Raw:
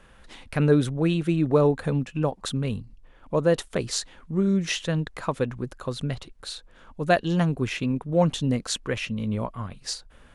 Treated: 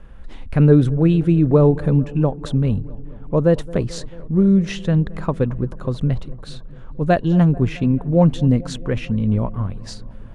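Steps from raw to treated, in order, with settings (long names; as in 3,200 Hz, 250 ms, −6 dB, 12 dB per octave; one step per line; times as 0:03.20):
spectral tilt −3 dB per octave
delay with a low-pass on its return 220 ms, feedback 72%, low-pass 1,300 Hz, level −20 dB
level +1.5 dB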